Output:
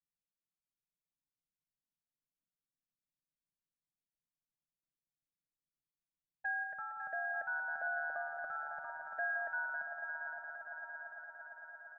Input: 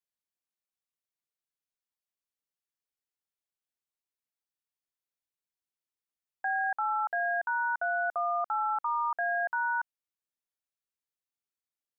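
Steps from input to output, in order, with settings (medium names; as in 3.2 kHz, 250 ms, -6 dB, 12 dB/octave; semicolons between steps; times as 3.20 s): comb 6.2 ms, depth 61%; level-controlled noise filter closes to 410 Hz, open at -28.5 dBFS; FFT filter 280 Hz 0 dB, 400 Hz -21 dB, 570 Hz -4 dB, 1 kHz -29 dB, 1.5 kHz -11 dB; echo with a slow build-up 114 ms, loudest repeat 8, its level -13 dB; reverb removal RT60 1.1 s; on a send: multi-head delay 184 ms, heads first and third, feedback 64%, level -10.5 dB; on the sum: trim +3.5 dB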